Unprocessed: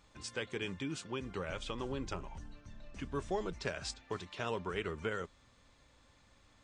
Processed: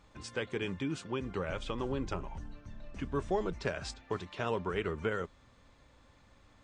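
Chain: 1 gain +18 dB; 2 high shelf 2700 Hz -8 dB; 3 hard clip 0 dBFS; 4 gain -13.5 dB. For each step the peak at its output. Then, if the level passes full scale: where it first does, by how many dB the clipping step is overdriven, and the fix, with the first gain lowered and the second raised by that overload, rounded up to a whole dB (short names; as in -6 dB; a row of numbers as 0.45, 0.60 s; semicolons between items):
-2.0, -4.5, -4.5, -18.0 dBFS; no overload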